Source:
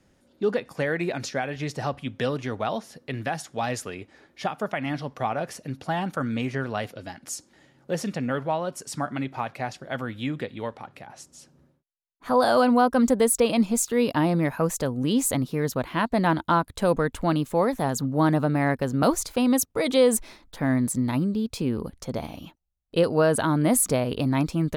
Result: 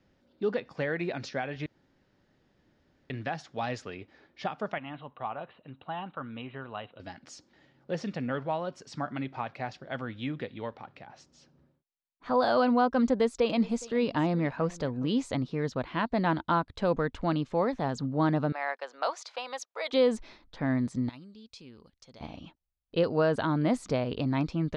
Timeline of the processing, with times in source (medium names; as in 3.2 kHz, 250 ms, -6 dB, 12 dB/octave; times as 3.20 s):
1.66–3.10 s: room tone
4.78–7.00 s: rippled Chebyshev low-pass 4 kHz, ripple 9 dB
12.98–15.08 s: delay 415 ms -21 dB
18.52–19.93 s: high-pass 610 Hz 24 dB/octave
21.09–22.21 s: pre-emphasis filter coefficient 0.9
whole clip: low-pass 5.2 kHz 24 dB/octave; trim -5 dB